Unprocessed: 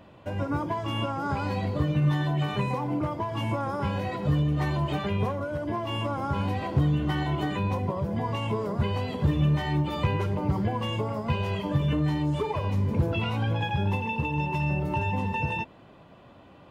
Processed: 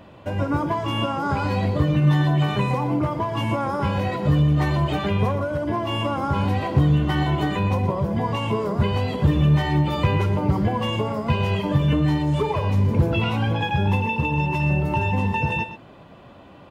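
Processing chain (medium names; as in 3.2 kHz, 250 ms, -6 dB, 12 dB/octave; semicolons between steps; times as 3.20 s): delay 122 ms -12 dB; trim +5.5 dB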